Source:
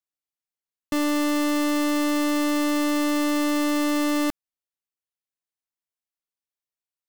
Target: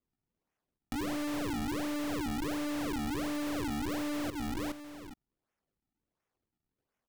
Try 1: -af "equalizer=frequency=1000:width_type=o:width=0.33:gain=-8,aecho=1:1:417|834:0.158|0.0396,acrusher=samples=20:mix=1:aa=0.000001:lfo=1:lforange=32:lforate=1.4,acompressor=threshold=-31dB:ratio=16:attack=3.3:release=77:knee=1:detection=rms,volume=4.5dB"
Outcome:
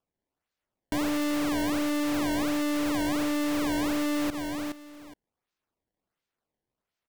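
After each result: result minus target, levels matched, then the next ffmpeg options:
downward compressor: peak gain reduction −7 dB; sample-and-hold swept by an LFO: distortion −8 dB
-af "equalizer=frequency=1000:width_type=o:width=0.33:gain=-8,aecho=1:1:417|834:0.158|0.0396,acrusher=samples=20:mix=1:aa=0.000001:lfo=1:lforange=32:lforate=1.4,acompressor=threshold=-38.5dB:ratio=16:attack=3.3:release=77:knee=1:detection=rms,volume=4.5dB"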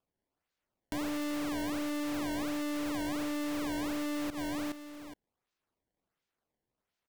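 sample-and-hold swept by an LFO: distortion −8 dB
-af "equalizer=frequency=1000:width_type=o:width=0.33:gain=-8,aecho=1:1:417|834:0.158|0.0396,acrusher=samples=48:mix=1:aa=0.000001:lfo=1:lforange=76.8:lforate=1.4,acompressor=threshold=-38.5dB:ratio=16:attack=3.3:release=77:knee=1:detection=rms,volume=4.5dB"

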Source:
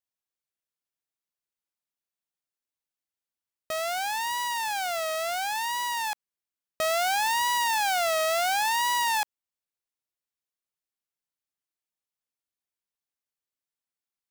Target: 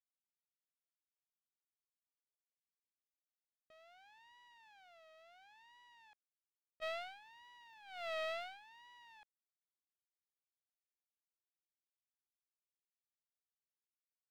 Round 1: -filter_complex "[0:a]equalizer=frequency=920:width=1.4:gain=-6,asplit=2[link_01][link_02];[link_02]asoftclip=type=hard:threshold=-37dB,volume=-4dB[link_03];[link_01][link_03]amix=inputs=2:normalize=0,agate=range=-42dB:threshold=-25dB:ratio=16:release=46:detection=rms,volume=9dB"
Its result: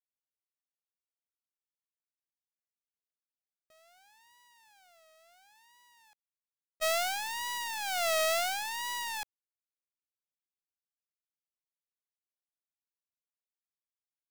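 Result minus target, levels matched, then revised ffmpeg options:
4,000 Hz band +3.5 dB
-filter_complex "[0:a]lowpass=frequency=3700:width=0.5412,lowpass=frequency=3700:width=1.3066,equalizer=frequency=920:width=1.4:gain=-6,asplit=2[link_01][link_02];[link_02]asoftclip=type=hard:threshold=-37dB,volume=-4dB[link_03];[link_01][link_03]amix=inputs=2:normalize=0,agate=range=-42dB:threshold=-25dB:ratio=16:release=46:detection=rms,volume=9dB"

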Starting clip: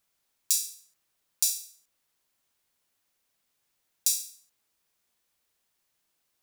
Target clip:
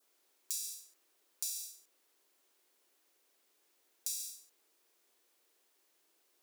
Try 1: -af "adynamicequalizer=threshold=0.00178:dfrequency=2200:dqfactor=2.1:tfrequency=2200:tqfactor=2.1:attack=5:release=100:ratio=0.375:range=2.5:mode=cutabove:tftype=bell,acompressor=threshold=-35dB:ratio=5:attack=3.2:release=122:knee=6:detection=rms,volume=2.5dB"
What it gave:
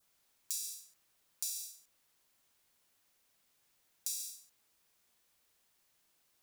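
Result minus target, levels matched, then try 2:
500 Hz band −4.0 dB
-af "adynamicequalizer=threshold=0.00178:dfrequency=2200:dqfactor=2.1:tfrequency=2200:tqfactor=2.1:attack=5:release=100:ratio=0.375:range=2.5:mode=cutabove:tftype=bell,highpass=frequency=360:width_type=q:width=2.8,acompressor=threshold=-35dB:ratio=5:attack=3.2:release=122:knee=6:detection=rms,volume=2.5dB"

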